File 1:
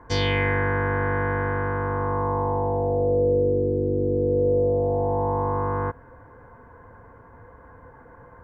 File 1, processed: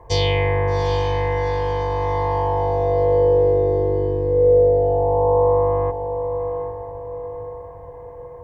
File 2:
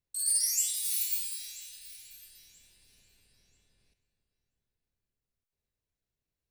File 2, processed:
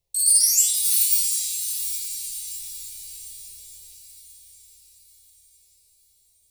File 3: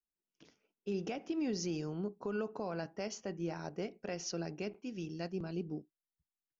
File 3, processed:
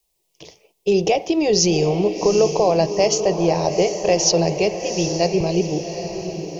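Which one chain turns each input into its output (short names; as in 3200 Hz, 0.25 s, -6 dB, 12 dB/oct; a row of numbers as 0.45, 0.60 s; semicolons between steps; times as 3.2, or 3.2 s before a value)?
fixed phaser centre 600 Hz, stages 4; diffused feedback echo 0.779 s, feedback 47%, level -8.5 dB; match loudness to -19 LUFS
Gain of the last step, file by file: +6.5, +11.0, +25.0 dB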